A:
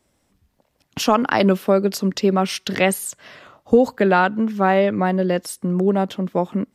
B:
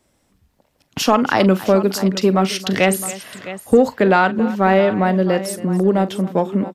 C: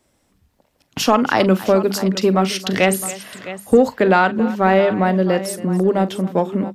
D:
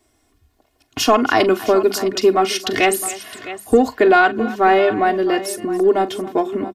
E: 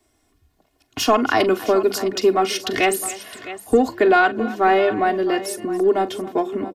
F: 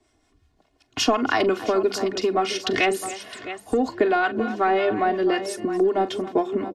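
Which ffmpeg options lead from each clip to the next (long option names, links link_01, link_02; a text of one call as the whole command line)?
ffmpeg -i in.wav -filter_complex "[0:a]aecho=1:1:42|276|661:0.168|0.126|0.168,asplit=2[link_01][link_02];[link_02]asoftclip=type=tanh:threshold=-11dB,volume=-5dB[link_03];[link_01][link_03]amix=inputs=2:normalize=0,volume=-1dB" out.wav
ffmpeg -i in.wav -af "bandreject=frequency=50:width_type=h:width=6,bandreject=frequency=100:width_type=h:width=6,bandreject=frequency=150:width_type=h:width=6,bandreject=frequency=200:width_type=h:width=6" out.wav
ffmpeg -i in.wav -af "aecho=1:1:2.8:0.87,volume=-1dB" out.wav
ffmpeg -i in.wav -filter_complex "[0:a]acrossover=split=240|2300[link_01][link_02][link_03];[link_01]asplit=8[link_04][link_05][link_06][link_07][link_08][link_09][link_10][link_11];[link_05]adelay=154,afreqshift=100,volume=-14dB[link_12];[link_06]adelay=308,afreqshift=200,volume=-17.9dB[link_13];[link_07]adelay=462,afreqshift=300,volume=-21.8dB[link_14];[link_08]adelay=616,afreqshift=400,volume=-25.6dB[link_15];[link_09]adelay=770,afreqshift=500,volume=-29.5dB[link_16];[link_10]adelay=924,afreqshift=600,volume=-33.4dB[link_17];[link_11]adelay=1078,afreqshift=700,volume=-37.3dB[link_18];[link_04][link_12][link_13][link_14][link_15][link_16][link_17][link_18]amix=inputs=8:normalize=0[link_19];[link_03]volume=15dB,asoftclip=hard,volume=-15dB[link_20];[link_19][link_02][link_20]amix=inputs=3:normalize=0,volume=-2.5dB" out.wav
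ffmpeg -i in.wav -filter_complex "[0:a]lowpass=6800,acompressor=threshold=-16dB:ratio=6,acrossover=split=840[link_01][link_02];[link_01]aeval=exprs='val(0)*(1-0.5/2+0.5/2*cos(2*PI*5.5*n/s))':channel_layout=same[link_03];[link_02]aeval=exprs='val(0)*(1-0.5/2-0.5/2*cos(2*PI*5.5*n/s))':channel_layout=same[link_04];[link_03][link_04]amix=inputs=2:normalize=0,volume=2dB" out.wav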